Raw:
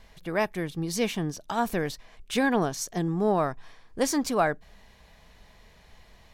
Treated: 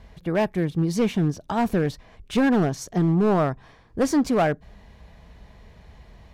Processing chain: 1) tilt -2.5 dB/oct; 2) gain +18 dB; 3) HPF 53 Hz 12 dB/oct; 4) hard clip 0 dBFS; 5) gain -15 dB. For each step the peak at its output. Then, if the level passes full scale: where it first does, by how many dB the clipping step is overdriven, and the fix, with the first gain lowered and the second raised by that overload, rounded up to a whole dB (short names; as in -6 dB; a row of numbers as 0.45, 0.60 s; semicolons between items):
-9.5, +8.5, +8.5, 0.0, -15.0 dBFS; step 2, 8.5 dB; step 2 +9 dB, step 5 -6 dB